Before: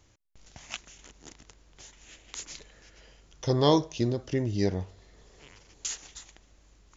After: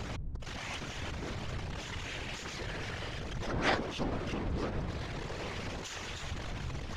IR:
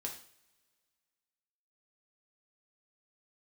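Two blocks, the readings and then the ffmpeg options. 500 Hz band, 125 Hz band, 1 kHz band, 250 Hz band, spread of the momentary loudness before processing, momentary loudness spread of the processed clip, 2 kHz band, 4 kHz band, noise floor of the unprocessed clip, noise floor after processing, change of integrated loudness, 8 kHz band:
-8.5 dB, -5.0 dB, -2.5 dB, -7.5 dB, 22 LU, 7 LU, +8.5 dB, -2.0 dB, -62 dBFS, -42 dBFS, -8.0 dB, n/a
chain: -filter_complex "[0:a]aeval=exprs='val(0)+0.5*0.0708*sgn(val(0))':c=same,lowpass=3.1k,asplit=2[a][b];[b]alimiter=limit=-19dB:level=0:latency=1:release=212,volume=0dB[c];[a][c]amix=inputs=2:normalize=0,aeval=exprs='0.531*(cos(1*acos(clip(val(0)/0.531,-1,1)))-cos(1*PI/2))+0.237*(cos(3*acos(clip(val(0)/0.531,-1,1)))-cos(3*PI/2))+0.0422*(cos(4*acos(clip(val(0)/0.531,-1,1)))-cos(4*PI/2))':c=same,afftfilt=real='hypot(re,im)*cos(2*PI*random(0))':imag='hypot(re,im)*sin(2*PI*random(1))':win_size=512:overlap=0.75,volume=2dB"

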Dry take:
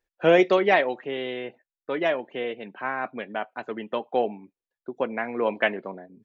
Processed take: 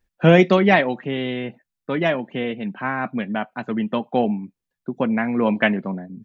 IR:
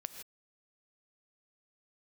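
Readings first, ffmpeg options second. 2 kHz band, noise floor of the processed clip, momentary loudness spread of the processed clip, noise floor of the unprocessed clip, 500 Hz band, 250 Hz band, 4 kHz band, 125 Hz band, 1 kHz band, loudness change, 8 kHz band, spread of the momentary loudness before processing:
+4.5 dB, -83 dBFS, 15 LU, under -85 dBFS, +2.5 dB, +10.5 dB, +4.5 dB, +17.5 dB, +3.5 dB, +5.0 dB, n/a, 18 LU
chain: -af "lowshelf=f=280:t=q:w=1.5:g=10.5,volume=4.5dB"

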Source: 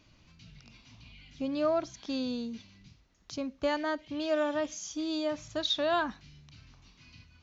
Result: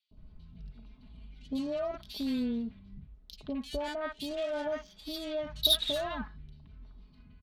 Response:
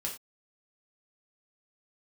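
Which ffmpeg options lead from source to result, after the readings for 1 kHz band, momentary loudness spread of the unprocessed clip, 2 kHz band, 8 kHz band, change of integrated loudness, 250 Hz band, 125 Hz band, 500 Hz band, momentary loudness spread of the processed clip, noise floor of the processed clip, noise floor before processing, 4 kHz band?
-6.5 dB, 10 LU, -5.5 dB, n/a, -0.5 dB, -1.5 dB, +2.5 dB, -3.5 dB, 25 LU, -59 dBFS, -63 dBFS, +5.0 dB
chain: -filter_complex "[0:a]lowpass=f=4.4k:w=0.5412,lowpass=f=4.4k:w=1.3066,aecho=1:1:4.7:0.68,acrossover=split=130|3300[a][b][c];[a]aphaser=in_gain=1:out_gain=1:delay=1.8:decay=0.78:speed=0.35:type=triangular[d];[b]alimiter=level_in=2dB:limit=-24dB:level=0:latency=1:release=129,volume=-2dB[e];[d][e][c]amix=inputs=3:normalize=0,aexciter=amount=2.3:drive=8.5:freq=3.3k,adynamicsmooth=sensitivity=4.5:basefreq=1.1k,acrossover=split=950|2900[f][g][h];[f]adelay=110[i];[g]adelay=170[j];[i][j][h]amix=inputs=3:normalize=0"

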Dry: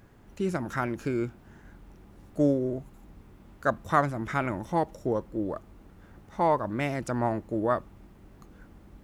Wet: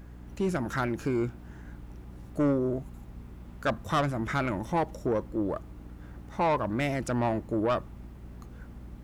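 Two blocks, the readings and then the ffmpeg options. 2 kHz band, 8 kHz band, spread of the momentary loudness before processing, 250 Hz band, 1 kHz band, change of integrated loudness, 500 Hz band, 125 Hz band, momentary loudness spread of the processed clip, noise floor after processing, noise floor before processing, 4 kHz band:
-0.5 dB, +2.0 dB, 8 LU, 0.0 dB, -2.0 dB, -0.5 dB, -0.5 dB, +1.0 dB, 19 LU, -47 dBFS, -54 dBFS, +5.5 dB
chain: -af "aeval=exprs='val(0)+0.00447*(sin(2*PI*60*n/s)+sin(2*PI*2*60*n/s)/2+sin(2*PI*3*60*n/s)/3+sin(2*PI*4*60*n/s)/4+sin(2*PI*5*60*n/s)/5)':c=same,asoftclip=type=tanh:threshold=-22.5dB,volume=2.5dB"

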